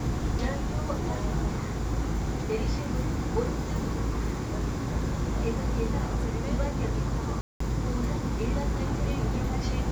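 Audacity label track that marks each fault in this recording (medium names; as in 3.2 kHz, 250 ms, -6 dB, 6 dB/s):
7.410000	7.600000	dropout 194 ms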